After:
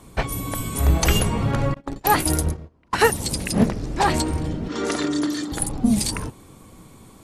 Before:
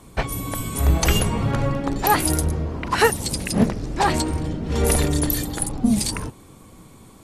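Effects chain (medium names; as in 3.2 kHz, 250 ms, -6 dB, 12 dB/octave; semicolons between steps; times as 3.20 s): 1.74–3.09 s: gate -21 dBFS, range -31 dB; 4.68–5.52 s: cabinet simulation 300–6800 Hz, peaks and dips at 310 Hz +8 dB, 500 Hz -8 dB, 810 Hz -7 dB, 1.3 kHz +6 dB, 2.5 kHz -5 dB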